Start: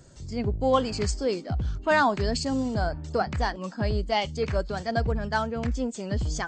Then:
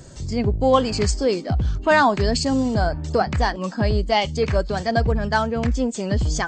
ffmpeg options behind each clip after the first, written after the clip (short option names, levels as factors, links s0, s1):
-filter_complex "[0:a]bandreject=f=1400:w=21,asplit=2[s0][s1];[s1]acompressor=threshold=0.0178:ratio=6,volume=0.891[s2];[s0][s2]amix=inputs=2:normalize=0,volume=1.68"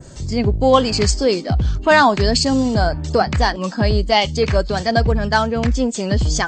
-af "adynamicequalizer=threshold=0.01:dfrequency=4400:dqfactor=0.82:tfrequency=4400:tqfactor=0.82:attack=5:release=100:ratio=0.375:range=2:mode=boostabove:tftype=bell,volume=1.5"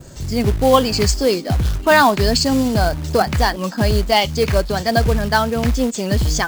-af "acrusher=bits=4:mode=log:mix=0:aa=0.000001"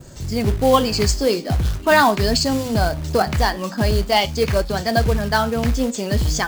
-af "flanger=delay=8:depth=6.6:regen=-76:speed=0.43:shape=triangular,volume=1.33"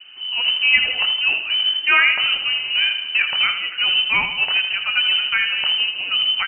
-af "aecho=1:1:81|162|243|324|405|486:0.335|0.181|0.0977|0.0527|0.0285|0.0154,lowpass=f=2600:t=q:w=0.5098,lowpass=f=2600:t=q:w=0.6013,lowpass=f=2600:t=q:w=0.9,lowpass=f=2600:t=q:w=2.563,afreqshift=-3100,volume=0.841"